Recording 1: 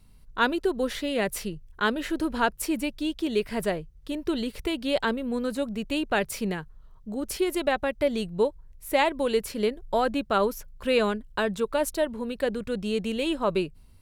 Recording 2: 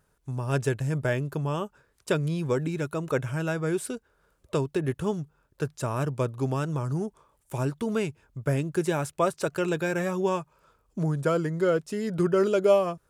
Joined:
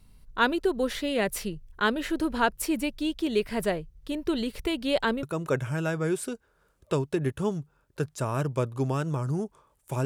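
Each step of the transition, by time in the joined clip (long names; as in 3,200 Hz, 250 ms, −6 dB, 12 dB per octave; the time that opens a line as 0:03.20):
recording 1
0:05.23: continue with recording 2 from 0:02.85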